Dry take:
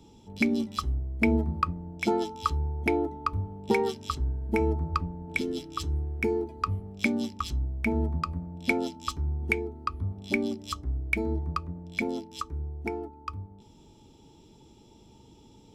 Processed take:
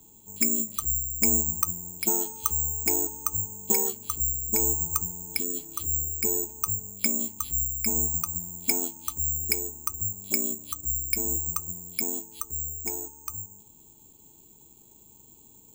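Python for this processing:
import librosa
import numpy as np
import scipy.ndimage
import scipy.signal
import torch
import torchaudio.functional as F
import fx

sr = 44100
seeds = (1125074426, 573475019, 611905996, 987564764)

y = (np.kron(scipy.signal.resample_poly(x, 1, 6), np.eye(6)[0]) * 6)[:len(x)]
y = y * librosa.db_to_amplitude(-7.0)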